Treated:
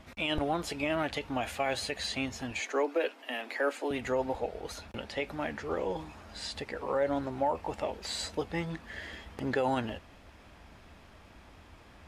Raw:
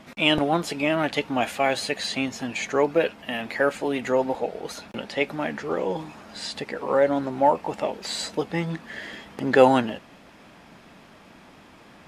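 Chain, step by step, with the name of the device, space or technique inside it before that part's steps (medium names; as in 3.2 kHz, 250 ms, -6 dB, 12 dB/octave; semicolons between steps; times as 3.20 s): 2.59–3.91 s: steep high-pass 240 Hz 96 dB/octave; car stereo with a boomy subwoofer (resonant low shelf 110 Hz +13 dB, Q 1.5; peak limiter -14 dBFS, peak gain reduction 11 dB); trim -6 dB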